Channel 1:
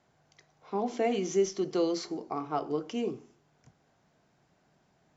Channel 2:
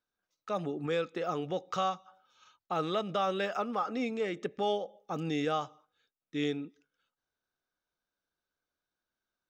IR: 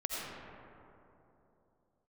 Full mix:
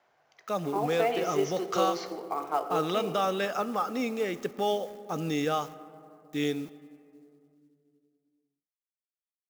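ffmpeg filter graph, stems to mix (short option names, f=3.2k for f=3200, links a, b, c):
-filter_complex "[0:a]acrossover=split=440 3900:gain=0.112 1 0.0891[a][b][c];[a][b][c]amix=inputs=3:normalize=0,volume=2.5dB,asplit=2[d][e];[e]volume=-12dB[f];[1:a]aeval=exprs='val(0)*gte(abs(val(0)),0.00224)':c=same,volume=2dB,asplit=2[g][h];[h]volume=-20dB[i];[2:a]atrim=start_sample=2205[j];[f][i]amix=inputs=2:normalize=0[k];[k][j]afir=irnorm=-1:irlink=0[l];[d][g][l]amix=inputs=3:normalize=0,aexciter=amount=1.5:drive=6.6:freq=5.3k,acrusher=bits=6:mode=log:mix=0:aa=0.000001"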